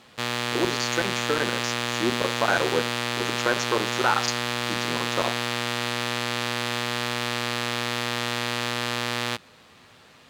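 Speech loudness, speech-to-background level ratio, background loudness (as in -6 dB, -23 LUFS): -28.0 LUFS, -1.5 dB, -26.5 LUFS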